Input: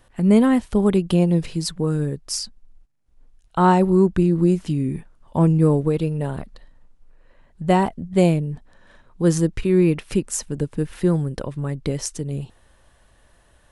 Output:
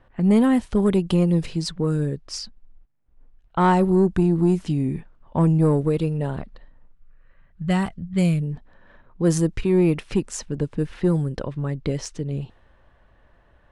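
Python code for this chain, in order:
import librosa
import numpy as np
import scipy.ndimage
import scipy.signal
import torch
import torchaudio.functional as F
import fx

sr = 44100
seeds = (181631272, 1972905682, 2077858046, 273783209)

y = fx.spec_box(x, sr, start_s=6.92, length_s=1.5, low_hz=210.0, high_hz=1100.0, gain_db=-9)
y = fx.env_lowpass(y, sr, base_hz=2100.0, full_db=-15.0)
y = 10.0 ** (-9.5 / 20.0) * np.tanh(y / 10.0 ** (-9.5 / 20.0))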